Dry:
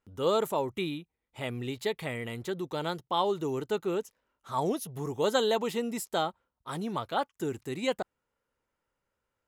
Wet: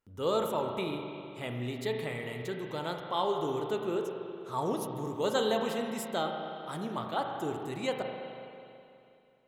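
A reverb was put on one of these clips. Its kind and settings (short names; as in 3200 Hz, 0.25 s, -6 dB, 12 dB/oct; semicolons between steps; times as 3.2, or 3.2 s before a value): spring tank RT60 2.7 s, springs 32/41 ms, chirp 50 ms, DRR 2.5 dB; gain -3.5 dB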